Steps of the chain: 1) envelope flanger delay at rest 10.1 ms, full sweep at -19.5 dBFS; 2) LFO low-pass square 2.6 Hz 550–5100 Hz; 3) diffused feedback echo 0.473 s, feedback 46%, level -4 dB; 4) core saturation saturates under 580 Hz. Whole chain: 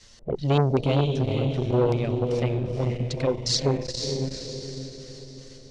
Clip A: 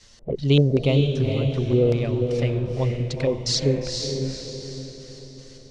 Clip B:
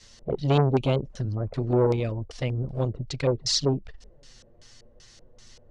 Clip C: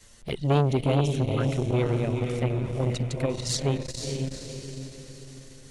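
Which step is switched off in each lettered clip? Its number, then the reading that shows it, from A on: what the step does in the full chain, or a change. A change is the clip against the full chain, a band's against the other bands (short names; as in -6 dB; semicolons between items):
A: 4, 1 kHz band -10.5 dB; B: 3, momentary loudness spread change -7 LU; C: 2, 4 kHz band -4.0 dB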